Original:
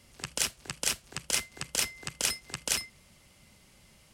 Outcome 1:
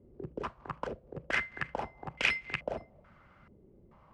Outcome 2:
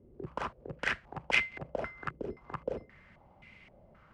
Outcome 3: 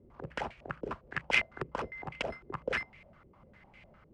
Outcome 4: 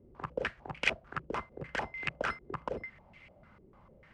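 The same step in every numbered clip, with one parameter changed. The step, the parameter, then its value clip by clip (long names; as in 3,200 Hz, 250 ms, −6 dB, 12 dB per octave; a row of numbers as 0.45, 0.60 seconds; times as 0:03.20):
low-pass on a step sequencer, speed: 2.3, 3.8, 9.9, 6.7 Hertz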